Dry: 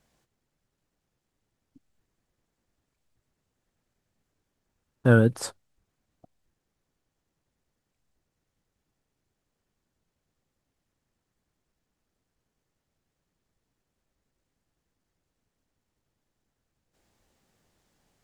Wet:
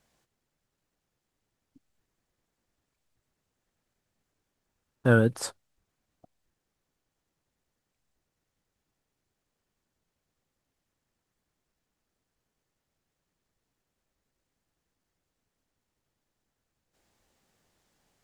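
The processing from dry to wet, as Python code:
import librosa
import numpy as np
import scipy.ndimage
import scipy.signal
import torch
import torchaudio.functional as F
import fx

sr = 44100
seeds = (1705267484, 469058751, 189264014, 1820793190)

y = fx.low_shelf(x, sr, hz=400.0, db=-4.0)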